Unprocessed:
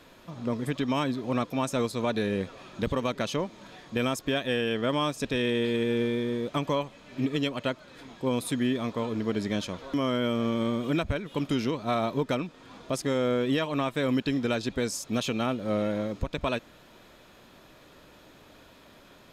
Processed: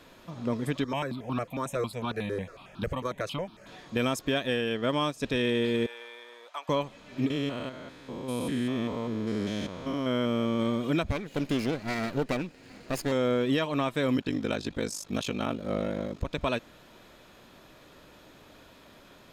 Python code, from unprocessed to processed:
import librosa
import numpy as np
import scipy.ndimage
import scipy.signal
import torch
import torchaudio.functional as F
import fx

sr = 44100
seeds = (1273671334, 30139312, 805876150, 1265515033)

y = fx.phaser_held(x, sr, hz=11.0, low_hz=740.0, high_hz=2000.0, at=(0.84, 3.67))
y = fx.upward_expand(y, sr, threshold_db=-38.0, expansion=1.5, at=(4.5, 5.23))
y = fx.ladder_highpass(y, sr, hz=690.0, resonance_pct=35, at=(5.86, 6.69))
y = fx.spec_steps(y, sr, hold_ms=200, at=(7.3, 10.6))
y = fx.lower_of_two(y, sr, delay_ms=0.43, at=(11.1, 13.12))
y = fx.ring_mod(y, sr, carrier_hz=25.0, at=(14.16, 16.25))